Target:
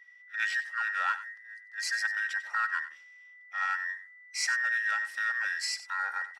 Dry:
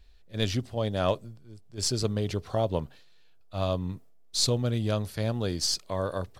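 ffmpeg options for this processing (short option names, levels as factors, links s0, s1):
-filter_complex "[0:a]afftfilt=real='real(if(between(b,1,1012),(2*floor((b-1)/92)+1)*92-b,b),0)':imag='imag(if(between(b,1,1012),(2*floor((b-1)/92)+1)*92-b,b),0)*if(between(b,1,1012),-1,1)':win_size=2048:overlap=0.75,asplit=2[s0][s1];[s1]asoftclip=type=tanh:threshold=0.0355,volume=0.596[s2];[s0][s2]amix=inputs=2:normalize=0,adynamicequalizer=threshold=0.00708:dfrequency=9000:dqfactor=1.1:tfrequency=9000:tqfactor=1.1:attack=5:release=100:ratio=0.375:range=3:mode=boostabove:tftype=bell,highpass=1000,aemphasis=mode=reproduction:type=50fm,aecho=1:1:3.7:0.3,aecho=1:1:94:0.2,volume=0.562"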